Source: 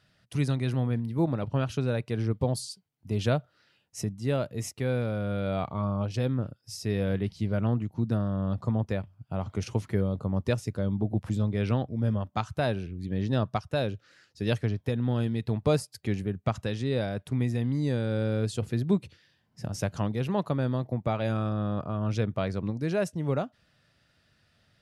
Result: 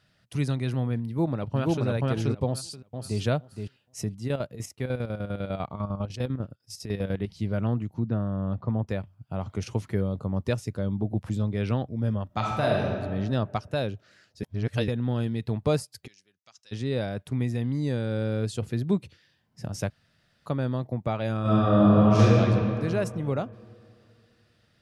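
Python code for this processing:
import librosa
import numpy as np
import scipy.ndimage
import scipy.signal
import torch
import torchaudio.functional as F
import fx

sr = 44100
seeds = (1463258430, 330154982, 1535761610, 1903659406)

y = fx.echo_throw(x, sr, start_s=1.06, length_s=0.8, ms=480, feedback_pct=15, wet_db=0.0)
y = fx.echo_throw(y, sr, start_s=2.46, length_s=0.74, ms=470, feedback_pct=15, wet_db=-6.5)
y = fx.chopper(y, sr, hz=10.0, depth_pct=65, duty_pct=55, at=(4.27, 7.28), fade=0.02)
y = fx.gaussian_blur(y, sr, sigma=2.5, at=(7.99, 8.88))
y = fx.reverb_throw(y, sr, start_s=12.26, length_s=0.6, rt60_s=1.7, drr_db=-2.0)
y = fx.bandpass_q(y, sr, hz=5600.0, q=3.8, at=(16.06, 16.71), fade=0.02)
y = fx.reverb_throw(y, sr, start_s=21.41, length_s=0.8, rt60_s=2.7, drr_db=-12.0)
y = fx.edit(y, sr, fx.reverse_span(start_s=14.43, length_s=0.45),
    fx.room_tone_fill(start_s=19.9, length_s=0.56), tone=tone)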